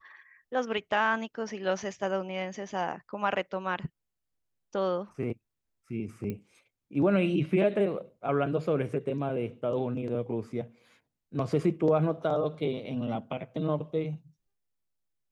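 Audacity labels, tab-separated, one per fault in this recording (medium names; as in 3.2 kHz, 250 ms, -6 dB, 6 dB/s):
6.300000	6.300000	pop -23 dBFS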